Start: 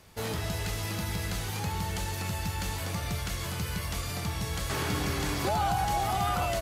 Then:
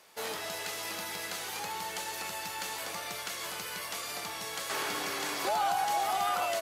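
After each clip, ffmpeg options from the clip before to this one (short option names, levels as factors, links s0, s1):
-af "highpass=470"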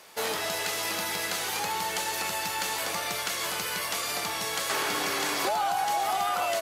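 -af "acompressor=threshold=0.0251:ratio=5,volume=2.37"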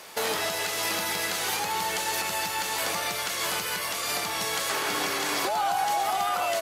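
-af "alimiter=limit=0.0631:level=0:latency=1:release=416,volume=2.11"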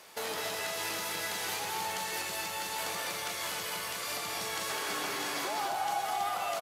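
-af "aecho=1:1:204.1|274.1:0.631|0.355,volume=0.376"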